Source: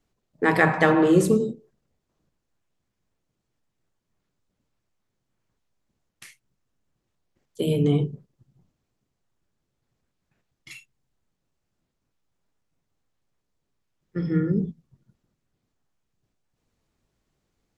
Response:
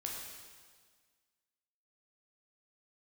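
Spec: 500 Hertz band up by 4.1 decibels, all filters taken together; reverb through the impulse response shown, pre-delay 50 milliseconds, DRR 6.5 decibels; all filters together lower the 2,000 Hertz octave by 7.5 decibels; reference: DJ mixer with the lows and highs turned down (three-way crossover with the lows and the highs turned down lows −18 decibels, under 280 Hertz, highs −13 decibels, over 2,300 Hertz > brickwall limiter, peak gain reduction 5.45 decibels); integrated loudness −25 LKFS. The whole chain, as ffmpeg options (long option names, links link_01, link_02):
-filter_complex "[0:a]equalizer=frequency=500:width_type=o:gain=6.5,equalizer=frequency=2000:width_type=o:gain=-7,asplit=2[link_01][link_02];[1:a]atrim=start_sample=2205,adelay=50[link_03];[link_02][link_03]afir=irnorm=-1:irlink=0,volume=-7dB[link_04];[link_01][link_04]amix=inputs=2:normalize=0,acrossover=split=280 2300:gain=0.126 1 0.224[link_05][link_06][link_07];[link_05][link_06][link_07]amix=inputs=3:normalize=0,volume=-2dB,alimiter=limit=-13dB:level=0:latency=1"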